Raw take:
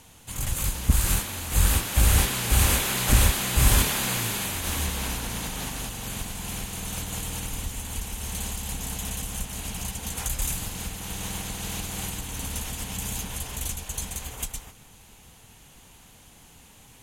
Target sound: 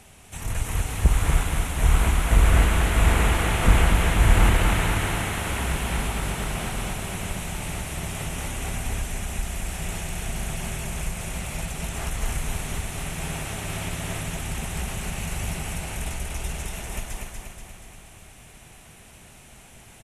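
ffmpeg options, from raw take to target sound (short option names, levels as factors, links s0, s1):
-filter_complex "[0:a]asetrate=37485,aresample=44100,equalizer=f=5300:w=2.7:g=-9,acrossover=split=2800[s0][s1];[s1]acompressor=threshold=0.0112:ratio=4:attack=1:release=60[s2];[s0][s2]amix=inputs=2:normalize=0,aeval=exprs='0.398*(abs(mod(val(0)/0.398+3,4)-2)-1)':c=same,asplit=2[s3][s4];[s4]aecho=0:1:240|480|720|960|1200|1440|1680|1920:0.631|0.353|0.198|0.111|0.0621|0.0347|0.0195|0.0109[s5];[s3][s5]amix=inputs=2:normalize=0,volume=1.33"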